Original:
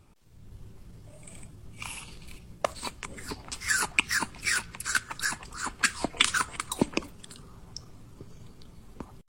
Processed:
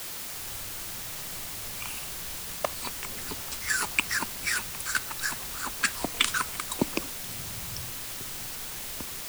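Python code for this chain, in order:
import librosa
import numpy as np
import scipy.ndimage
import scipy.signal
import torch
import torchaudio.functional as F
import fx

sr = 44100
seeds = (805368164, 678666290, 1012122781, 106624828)

y = fx.peak_eq(x, sr, hz=100.0, db=11.0, octaves=1.7, at=(7.23, 7.92))
y = fx.quant_dither(y, sr, seeds[0], bits=6, dither='triangular')
y = y * librosa.db_to_amplitude(-1.5)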